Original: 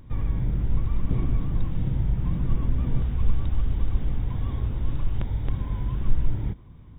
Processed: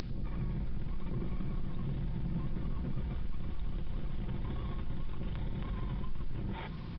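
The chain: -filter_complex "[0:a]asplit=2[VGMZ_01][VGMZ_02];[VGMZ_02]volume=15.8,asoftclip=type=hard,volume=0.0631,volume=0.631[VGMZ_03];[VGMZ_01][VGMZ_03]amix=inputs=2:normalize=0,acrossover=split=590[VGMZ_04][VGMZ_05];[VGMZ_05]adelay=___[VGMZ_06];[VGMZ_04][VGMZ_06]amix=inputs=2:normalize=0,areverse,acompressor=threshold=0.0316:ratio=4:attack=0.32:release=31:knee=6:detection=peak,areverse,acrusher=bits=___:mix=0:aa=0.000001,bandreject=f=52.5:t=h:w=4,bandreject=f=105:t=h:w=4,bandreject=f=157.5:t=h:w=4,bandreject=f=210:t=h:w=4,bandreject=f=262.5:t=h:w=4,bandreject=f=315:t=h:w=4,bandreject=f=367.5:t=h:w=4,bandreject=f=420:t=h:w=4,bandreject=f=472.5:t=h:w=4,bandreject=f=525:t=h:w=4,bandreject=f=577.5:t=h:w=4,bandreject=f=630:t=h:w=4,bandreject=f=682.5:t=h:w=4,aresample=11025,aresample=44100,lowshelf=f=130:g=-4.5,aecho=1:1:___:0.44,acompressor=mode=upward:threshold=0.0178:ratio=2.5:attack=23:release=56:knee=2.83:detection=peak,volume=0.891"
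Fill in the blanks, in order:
140, 9, 5.6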